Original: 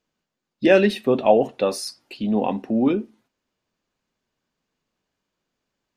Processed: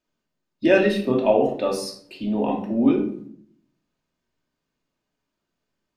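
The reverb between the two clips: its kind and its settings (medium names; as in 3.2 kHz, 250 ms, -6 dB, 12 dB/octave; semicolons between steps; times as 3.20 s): simulated room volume 900 m³, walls furnished, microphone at 2.7 m; trim -5 dB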